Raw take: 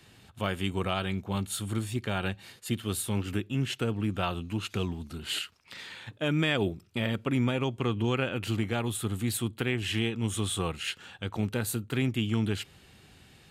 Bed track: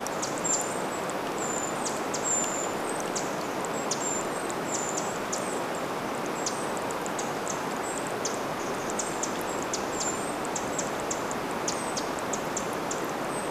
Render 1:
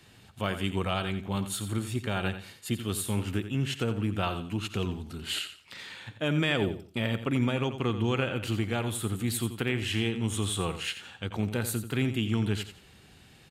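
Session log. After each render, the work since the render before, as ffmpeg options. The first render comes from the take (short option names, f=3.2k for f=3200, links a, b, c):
-af "aecho=1:1:87|174|261:0.282|0.0733|0.0191"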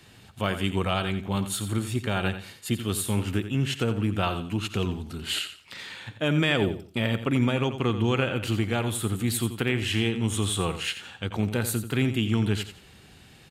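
-af "volume=3.5dB"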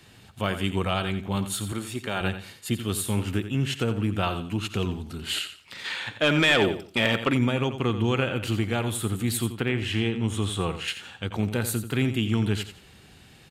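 -filter_complex "[0:a]asettb=1/sr,asplit=3[a][b][c];[a]atrim=end=1.724[d];[b]atrim=start=1.72:end=2.21,asetpts=PTS-STARTPTS,afade=t=in:d=0.004:c=qsin,afade=t=out:st=0.486:d=0.004:c=qsin,highpass=f=290:p=1[e];[c]atrim=start=2.206[f];[d][e]acrossfade=d=0.004:c1=hsin:c2=qsin[g];[g][f]acrossfade=d=0.004:c1=qsin:c2=hsin,asplit=3[h][i][j];[h]afade=t=out:st=5.84:d=0.02[k];[i]asplit=2[l][m];[m]highpass=f=720:p=1,volume=15dB,asoftclip=type=tanh:threshold=-9dB[n];[l][n]amix=inputs=2:normalize=0,lowpass=f=5.5k:p=1,volume=-6dB,afade=t=in:st=5.84:d=0.02,afade=t=out:st=7.33:d=0.02[o];[j]afade=t=in:st=7.33:d=0.02[p];[k][o][p]amix=inputs=3:normalize=0,asettb=1/sr,asplit=3[q][r][s];[q]atrim=end=9.524[t];[r]atrim=start=9.52:end=10.88,asetpts=PTS-STARTPTS,afade=t=in:d=0.004:c=qsin,afade=t=out:st=1.356:d=0.004:c=qsin,highshelf=f=5.3k:g=-9.5[u];[s]atrim=start=10.876[v];[t][u]acrossfade=d=0.004:c1=hsin:c2=qsin[w];[w][v]acrossfade=d=0.004:c1=qsin:c2=hsin"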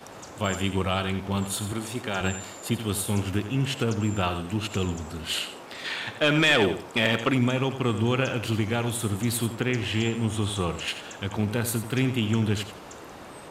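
-filter_complex "[1:a]volume=-12.5dB[a];[0:a][a]amix=inputs=2:normalize=0"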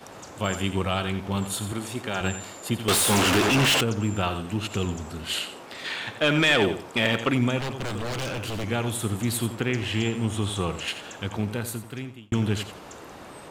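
-filter_complex "[0:a]asettb=1/sr,asplit=3[a][b][c];[a]atrim=end=2.884[d];[b]atrim=start=2.88:end=3.81,asetpts=PTS-STARTPTS,afade=t=in:d=0.004:c=qsin,afade=t=out:st=0.926:d=0.004:c=qsin,asplit=2[e][f];[f]highpass=f=720:p=1,volume=33dB,asoftclip=type=tanh:threshold=-13dB[g];[e][g]amix=inputs=2:normalize=0,lowpass=f=7.3k:p=1,volume=-6dB[h];[c]atrim=start=3.806[i];[d][h]acrossfade=d=0.004:c1=hsin:c2=qsin[j];[j][i]acrossfade=d=0.004:c1=qsin:c2=hsin,asettb=1/sr,asplit=3[k][l][m];[k]atrim=end=7.594[n];[l]atrim=start=7.59:end=8.64,asetpts=PTS-STARTPTS,afade=t=in:d=0.004:c=qsin,afade=t=out:st=1.046:d=0.004:c=qsin,aeval=exprs='0.0562*(abs(mod(val(0)/0.0562+3,4)-2)-1)':c=same[o];[m]atrim=start=8.636[p];[n][o]acrossfade=d=0.004:c1=hsin:c2=qsin[q];[q][p]acrossfade=d=0.004:c1=qsin:c2=hsin,asplit=2[r][s];[r]atrim=end=12.32,asetpts=PTS-STARTPTS,afade=t=out:st=11.25:d=1.07[t];[s]atrim=start=12.32,asetpts=PTS-STARTPTS,afade=t=in:d=0.004:c=hsin[u];[t][u]concat=n=2:v=0:a=1"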